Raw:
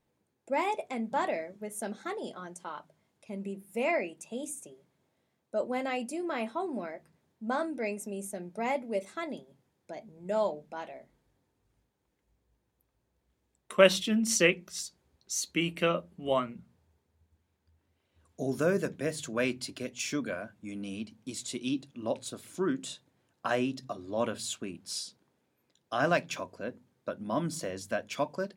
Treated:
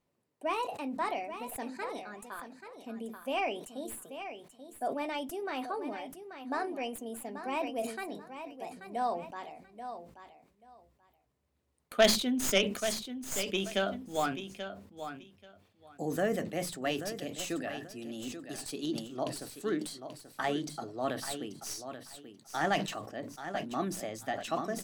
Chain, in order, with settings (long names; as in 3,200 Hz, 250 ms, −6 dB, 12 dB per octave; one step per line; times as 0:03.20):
stylus tracing distortion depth 0.076 ms
speed change +15%
on a send: repeating echo 834 ms, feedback 17%, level −10 dB
on the sum: level that may fall only so fast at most 88 dB per second
level −3 dB